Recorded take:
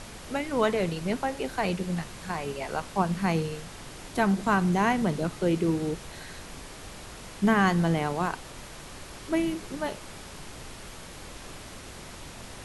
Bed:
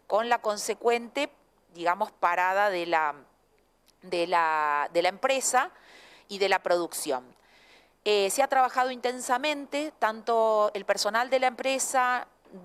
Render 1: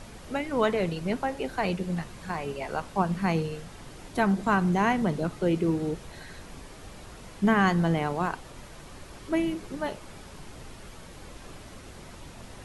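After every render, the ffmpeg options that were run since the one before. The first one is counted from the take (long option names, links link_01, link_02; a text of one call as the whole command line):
ffmpeg -i in.wav -af "afftdn=noise_reduction=6:noise_floor=-44" out.wav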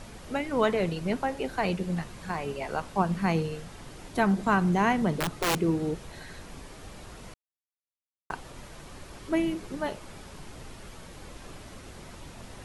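ffmpeg -i in.wav -filter_complex "[0:a]asettb=1/sr,asplit=3[link_01][link_02][link_03];[link_01]atrim=end=5.204[link_04];[link_02]atrim=start=5.2:end=5.62,asetpts=PTS-STARTPTS,afade=type=in:duration=0.004:curve=qsin,afade=type=out:start_time=0.416:duration=0.004:curve=qsin,aeval=exprs='(mod(10.6*val(0)+1,2)-1)/10.6':channel_layout=same[link_05];[link_03]atrim=start=5.616[link_06];[link_04][link_05]acrossfade=duration=0.004:curve1=hsin:curve2=qsin[link_07];[link_07][link_06]acrossfade=duration=0.004:curve1=qsin:curve2=hsin,asplit=3[link_08][link_09][link_10];[link_08]atrim=end=7.34,asetpts=PTS-STARTPTS,afade=type=out:start_time=7.336:duration=0.004:curve=hsin[link_11];[link_09]atrim=start=7.34:end=8.3,asetpts=PTS-STARTPTS,volume=0[link_12];[link_10]atrim=start=8.3,asetpts=PTS-STARTPTS,afade=type=in:duration=0.004:curve=hsin[link_13];[link_11][link_12][link_13]concat=n=3:v=0:a=1" out.wav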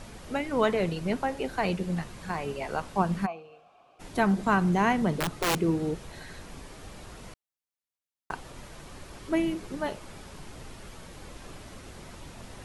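ffmpeg -i in.wav -filter_complex "[0:a]asplit=3[link_01][link_02][link_03];[link_01]afade=type=out:start_time=3.25:duration=0.02[link_04];[link_02]asplit=3[link_05][link_06][link_07];[link_05]bandpass=frequency=730:width_type=q:width=8,volume=0dB[link_08];[link_06]bandpass=frequency=1090:width_type=q:width=8,volume=-6dB[link_09];[link_07]bandpass=frequency=2440:width_type=q:width=8,volume=-9dB[link_10];[link_08][link_09][link_10]amix=inputs=3:normalize=0,afade=type=in:start_time=3.25:duration=0.02,afade=type=out:start_time=3.99:duration=0.02[link_11];[link_03]afade=type=in:start_time=3.99:duration=0.02[link_12];[link_04][link_11][link_12]amix=inputs=3:normalize=0" out.wav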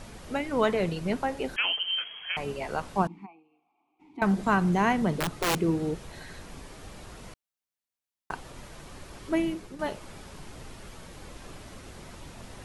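ffmpeg -i in.wav -filter_complex "[0:a]asettb=1/sr,asplit=3[link_01][link_02][link_03];[link_01]atrim=end=1.564[link_04];[link_02]atrim=start=1.56:end=2.37,asetpts=PTS-STARTPTS,afade=type=in:duration=0.004:curve=qsin,afade=type=out:start_time=0.806:duration=0.004:curve=qsin,lowpass=frequency=2800:width_type=q:width=0.5098,lowpass=frequency=2800:width_type=q:width=0.6013,lowpass=frequency=2800:width_type=q:width=0.9,lowpass=frequency=2800:width_type=q:width=2.563,afreqshift=-3300[link_05];[link_03]atrim=start=2.366[link_06];[link_04][link_05]acrossfade=duration=0.004:curve1=hsin:curve2=qsin[link_07];[link_07][link_06]acrossfade=duration=0.004:curve1=qsin:curve2=hsin,asettb=1/sr,asplit=3[link_08][link_09][link_10];[link_08]atrim=end=3.074[link_11];[link_09]atrim=start=3.07:end=4.22,asetpts=PTS-STARTPTS,afade=type=in:duration=0.004:curve=qsin,afade=type=out:start_time=1.146:duration=0.004:curve=qsin,asplit=3[link_12][link_13][link_14];[link_12]bandpass=frequency=300:width_type=q:width=8,volume=0dB[link_15];[link_13]bandpass=frequency=870:width_type=q:width=8,volume=-6dB[link_16];[link_14]bandpass=frequency=2240:width_type=q:width=8,volume=-9dB[link_17];[link_15][link_16][link_17]amix=inputs=3:normalize=0[link_18];[link_10]atrim=start=4.216[link_19];[link_11][link_18]acrossfade=duration=0.004:curve1=hsin:curve2=qsin[link_20];[link_20][link_19]acrossfade=duration=0.004:curve1=qsin:curve2=hsin,asplit=2[link_21][link_22];[link_21]atrim=end=9.79,asetpts=PTS-STARTPTS,afade=type=out:start_time=9.31:duration=0.48:curve=qsin:silence=0.375837[link_23];[link_22]atrim=start=9.79,asetpts=PTS-STARTPTS,afade=type=in:duration=0.004:curve=hsin:silence=0.375837[link_24];[link_23][link_24]concat=n=2:v=0:a=1" out.wav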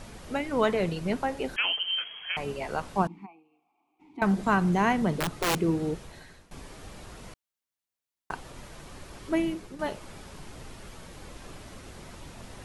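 ffmpeg -i in.wav -filter_complex "[0:a]asplit=2[link_01][link_02];[link_01]atrim=end=6.51,asetpts=PTS-STARTPTS,afade=type=out:start_time=5.93:duration=0.58:silence=0.125893[link_03];[link_02]atrim=start=6.51,asetpts=PTS-STARTPTS,afade=type=in:duration=0.004:curve=hsin:silence=0.125893[link_04];[link_03][link_04]concat=n=2:v=0:a=1" out.wav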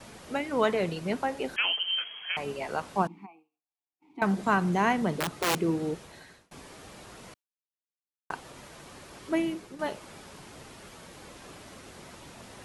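ffmpeg -i in.wav -af "highpass=frequency=180:poles=1,agate=range=-33dB:threshold=-53dB:ratio=3:detection=peak" out.wav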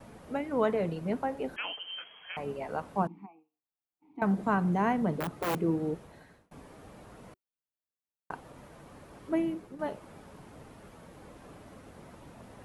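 ffmpeg -i in.wav -af "equalizer=frequency=5400:width=0.33:gain=-14,bandreject=frequency=370:width=12" out.wav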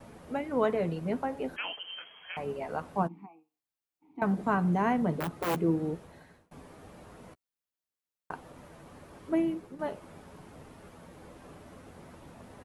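ffmpeg -i in.wav -filter_complex "[0:a]asplit=2[link_01][link_02];[link_02]adelay=12,volume=-12dB[link_03];[link_01][link_03]amix=inputs=2:normalize=0" out.wav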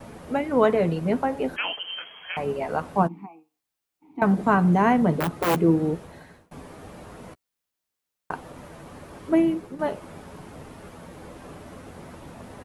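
ffmpeg -i in.wav -af "volume=8dB" out.wav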